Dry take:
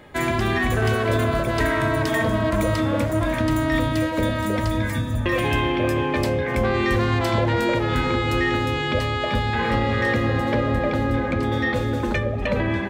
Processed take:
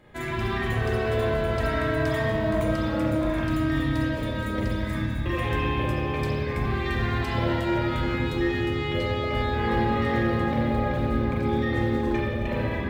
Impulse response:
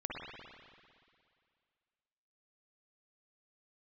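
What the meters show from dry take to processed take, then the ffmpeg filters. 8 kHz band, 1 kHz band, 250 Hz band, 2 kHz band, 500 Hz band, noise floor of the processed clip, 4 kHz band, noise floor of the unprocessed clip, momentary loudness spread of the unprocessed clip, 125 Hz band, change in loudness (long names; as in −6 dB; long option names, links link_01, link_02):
below −10 dB, −4.5 dB, −3.0 dB, −5.5 dB, −4.0 dB, −29 dBFS, −6.0 dB, −25 dBFS, 3 LU, −3.5 dB, −4.0 dB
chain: -filter_complex "[0:a]lowshelf=frequency=180:gain=5.5,acrusher=bits=9:mode=log:mix=0:aa=0.000001[link_01];[1:a]atrim=start_sample=2205,asetrate=61740,aresample=44100[link_02];[link_01][link_02]afir=irnorm=-1:irlink=0,volume=-5dB"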